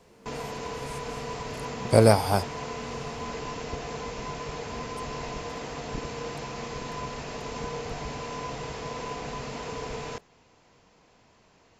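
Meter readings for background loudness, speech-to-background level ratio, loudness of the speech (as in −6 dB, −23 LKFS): −35.5 LKFS, 14.0 dB, −21.5 LKFS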